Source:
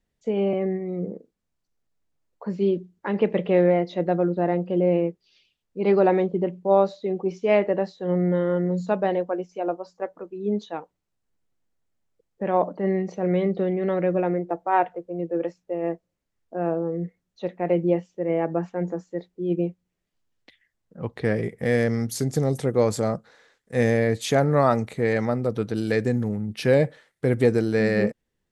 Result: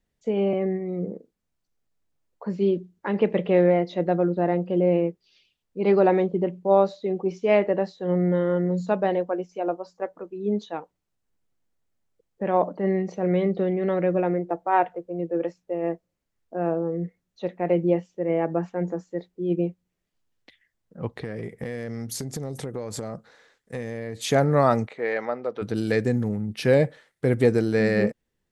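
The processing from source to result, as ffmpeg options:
ffmpeg -i in.wav -filter_complex "[0:a]asettb=1/sr,asplit=3[link_01][link_02][link_03];[link_01]atrim=end=21.144[link_04];[link_02]atrim=start=21.14:end=24.2,asetpts=PTS-STARTPTS,afade=type=in:duration=0.004:curve=qsin,afade=type=out:start_time=3.056:duration=0.004:curve=qsin,acompressor=threshold=-27dB:ratio=16:attack=3.2:release=140:knee=1:detection=peak[link_05];[link_03]atrim=start=24.196[link_06];[link_04][link_05]acrossfade=duration=0.004:curve1=hsin:curve2=qsin[link_07];[link_07][link_06]acrossfade=duration=0.004:curve1=qsin:curve2=hsin,asplit=3[link_08][link_09][link_10];[link_08]afade=type=out:start_time=24.86:duration=0.02[link_11];[link_09]highpass=480,lowpass=3100,afade=type=in:start_time=24.86:duration=0.02,afade=type=out:start_time=25.61:duration=0.02[link_12];[link_10]afade=type=in:start_time=25.61:duration=0.02[link_13];[link_11][link_12][link_13]amix=inputs=3:normalize=0" out.wav

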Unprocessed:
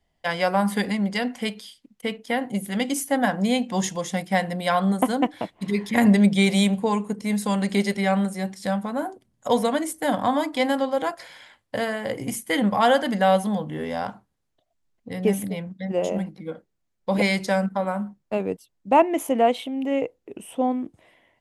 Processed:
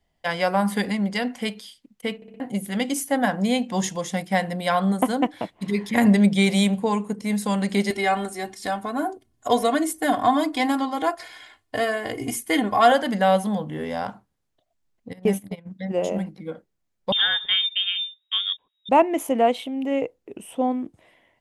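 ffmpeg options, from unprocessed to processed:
ffmpeg -i in.wav -filter_complex "[0:a]asettb=1/sr,asplit=3[link_01][link_02][link_03];[link_01]atrim=end=7.904[link_04];[link_02]atrim=start=7.9:end=12.92,asetpts=PTS-STARTPTS,afade=type=in:duration=0.004:curve=qsin,afade=type=out:start_time=5.016:duration=0.004:curve=qsin,aecho=1:1:2.8:0.82,atrim=end_sample=221382[link_05];[link_03]atrim=start=12.916[link_06];[link_04][link_05]acrossfade=duration=0.004:curve1=hsin:curve2=qsin[link_07];[link_07][link_06]acrossfade=duration=0.004:curve1=qsin:curve2=hsin,asplit=3[link_08][link_09][link_10];[link_08]afade=type=out:start_time=15.12:duration=0.02[link_11];[link_09]agate=range=-19dB:threshold=-28dB:ratio=16:release=100:detection=peak,afade=type=in:start_time=15.12:duration=0.02,afade=type=out:start_time=15.65:duration=0.02[link_12];[link_10]afade=type=in:start_time=15.65:duration=0.02[link_13];[link_11][link_12][link_13]amix=inputs=3:normalize=0,asettb=1/sr,asplit=3[link_14][link_15][link_16];[link_14]atrim=end=17.124[link_17];[link_15]atrim=start=17.12:end=18.89,asetpts=PTS-STARTPTS,afade=type=in:duration=0.004:curve=qsin,afade=type=out:start_time=1.766:duration=0.004:curve=qsin,lowpass=frequency=3200:width_type=q:width=0.5098,lowpass=frequency=3200:width_type=q:width=0.6013,lowpass=frequency=3200:width_type=q:width=0.9,lowpass=frequency=3200:width_type=q:width=2.563,afreqshift=-3800[link_18];[link_16]atrim=start=18.886[link_19];[link_17][link_18]acrossfade=duration=0.004:curve1=hsin:curve2=qsin[link_20];[link_20][link_19]acrossfade=duration=0.004:curve1=qsin:curve2=hsin,asplit=5[link_21][link_22][link_23][link_24][link_25];[link_21]atrim=end=2.222[link_26];[link_22]atrim=start=2.158:end=2.222[link_27];[link_23]atrim=start=2.158:end=2.222[link_28];[link_24]atrim=start=2.158:end=2.222[link_29];[link_25]atrim=start=2.398[link_30];[link_26][link_27]acrossfade=duration=0.004:curve1=hsin:curve2=hsin[link_31];[link_31][link_28]acrossfade=duration=0.004:curve1=hsin:curve2=hsin[link_32];[link_32][link_29]acrossfade=duration=0.004:curve1=hsin:curve2=hsin[link_33];[link_33][link_30]acrossfade=duration=0.004:curve1=hsin:curve2=hsin" out.wav

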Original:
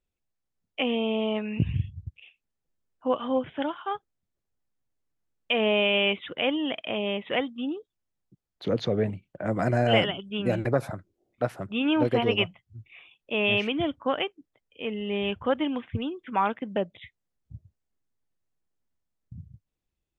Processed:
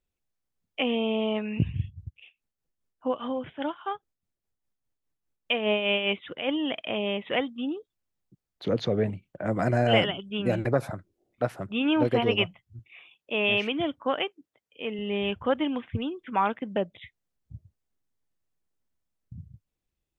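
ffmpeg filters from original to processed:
ffmpeg -i in.wav -filter_complex "[0:a]asettb=1/sr,asplit=3[link_01][link_02][link_03];[link_01]atrim=end=1.634[link_04];[link_02]atrim=start=1.63:end=6.49,asetpts=PTS-STARTPTS,afade=type=in:duration=0.004:curve=qsin,afade=type=out:start_time=4.856:duration=0.004:curve=qsin,tremolo=f=4.9:d=0.56[link_05];[link_03]atrim=start=6.486[link_06];[link_04][link_05]acrossfade=duration=0.004:curve1=hsin:curve2=qsin[link_07];[link_07][link_06]acrossfade=duration=0.004:curve1=qsin:curve2=hsin,asettb=1/sr,asplit=3[link_08][link_09][link_10];[link_08]atrim=end=12.794[link_11];[link_09]atrim=start=12.79:end=14.99,asetpts=PTS-STARTPTS,afade=type=in:duration=0.004:curve=qsin,afade=type=out:start_time=2.196:duration=0.004:curve=qsin,highpass=frequency=180:poles=1[link_12];[link_10]atrim=start=14.986[link_13];[link_11][link_12]acrossfade=duration=0.004:curve1=hsin:curve2=qsin[link_14];[link_14][link_13]acrossfade=duration=0.004:curve1=qsin:curve2=hsin" out.wav

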